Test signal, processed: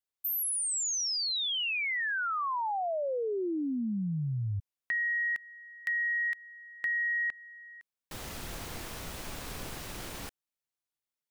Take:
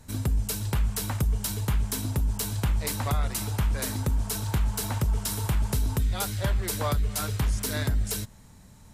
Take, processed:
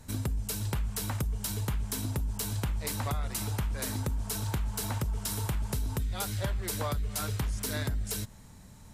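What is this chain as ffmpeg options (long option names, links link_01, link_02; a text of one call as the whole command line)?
ffmpeg -i in.wav -af "acompressor=threshold=-30dB:ratio=3" out.wav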